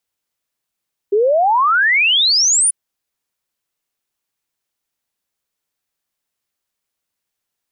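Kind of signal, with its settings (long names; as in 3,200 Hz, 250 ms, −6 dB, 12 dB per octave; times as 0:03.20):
exponential sine sweep 390 Hz → 10,000 Hz 1.59 s −10.5 dBFS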